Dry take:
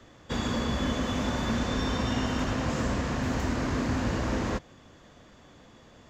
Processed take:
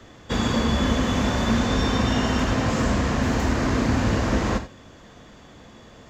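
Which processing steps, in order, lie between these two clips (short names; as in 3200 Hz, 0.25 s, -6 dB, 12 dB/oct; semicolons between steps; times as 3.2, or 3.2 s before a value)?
non-linear reverb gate 0.11 s flat, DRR 7.5 dB; gain +6 dB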